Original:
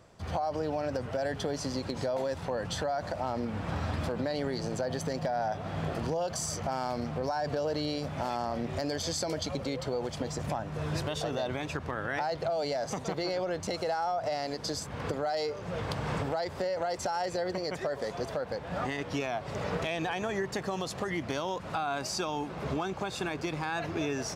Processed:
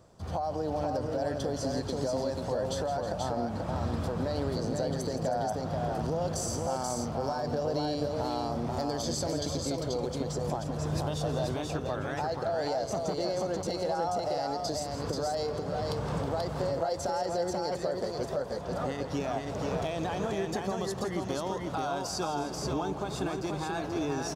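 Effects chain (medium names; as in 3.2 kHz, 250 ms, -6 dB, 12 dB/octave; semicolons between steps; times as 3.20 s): peaking EQ 2.2 kHz -9.5 dB 1.2 oct; multi-tap echo 166/319/484 ms -12/-14/-3.5 dB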